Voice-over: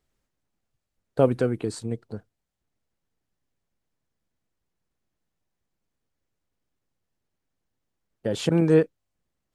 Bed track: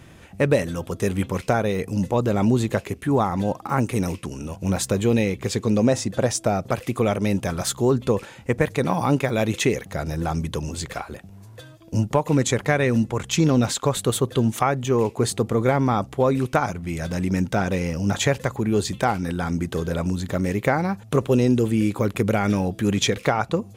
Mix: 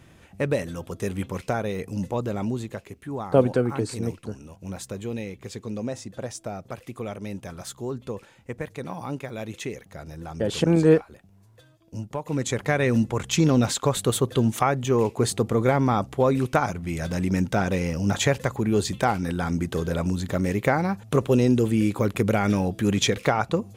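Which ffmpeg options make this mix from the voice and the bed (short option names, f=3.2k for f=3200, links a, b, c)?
-filter_complex "[0:a]adelay=2150,volume=1.5dB[a];[1:a]volume=5.5dB,afade=t=out:st=2.11:d=0.65:silence=0.473151,afade=t=in:st=12.13:d=0.79:silence=0.281838[b];[a][b]amix=inputs=2:normalize=0"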